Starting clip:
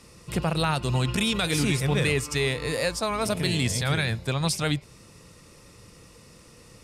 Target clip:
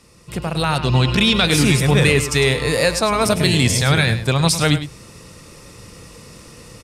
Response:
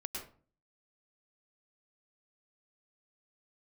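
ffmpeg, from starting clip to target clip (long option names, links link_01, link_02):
-filter_complex "[0:a]aecho=1:1:104:0.251,dynaudnorm=framelen=460:gausssize=3:maxgain=10dB,asettb=1/sr,asplit=3[link_01][link_02][link_03];[link_01]atrim=end=0.784[link_04];[link_02]atrim=start=0.78:end=1.51,asetpts=PTS-STARTPTS,afade=type=in:duration=0.004:curve=qsin,afade=type=out:start_time=0.726:duration=0.004:curve=qsin,highshelf=frequency=6100:width_type=q:width=1.5:gain=-8.5[link_05];[link_03]atrim=start=1.506[link_06];[link_04][link_05]acrossfade=duration=0.004:curve1=hsin:curve2=qsin[link_07];[link_07][link_06]acrossfade=duration=0.004:curve1=qsin:curve2=hsin"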